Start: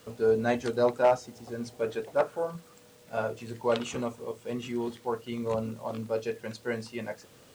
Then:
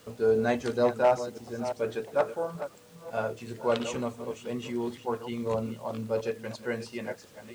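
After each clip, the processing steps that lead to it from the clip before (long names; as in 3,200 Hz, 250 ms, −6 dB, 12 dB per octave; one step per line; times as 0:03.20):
delay that plays each chunk backwards 345 ms, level −11 dB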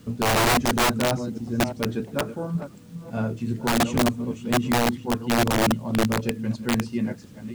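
low shelf with overshoot 350 Hz +13 dB, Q 1.5
wrap-around overflow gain 15 dB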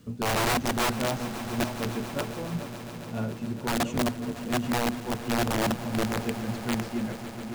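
echo that builds up and dies away 140 ms, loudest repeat 5, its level −17.5 dB
level −5.5 dB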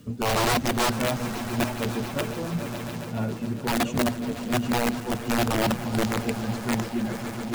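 spectral magnitudes quantised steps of 15 dB
reversed playback
upward compression, threshold −29 dBFS
reversed playback
level +3 dB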